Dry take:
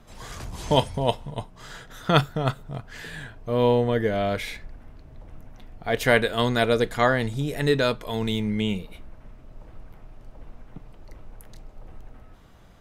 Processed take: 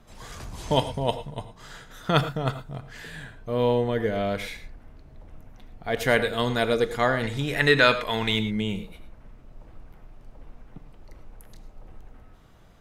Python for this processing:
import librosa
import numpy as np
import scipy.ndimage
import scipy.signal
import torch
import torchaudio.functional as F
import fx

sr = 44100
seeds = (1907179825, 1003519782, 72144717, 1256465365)

y = fx.peak_eq(x, sr, hz=1900.0, db=13.0, octaves=2.4, at=(7.23, 8.39))
y = fx.rev_gated(y, sr, seeds[0], gate_ms=130, shape='rising', drr_db=11.0)
y = F.gain(torch.from_numpy(y), -2.5).numpy()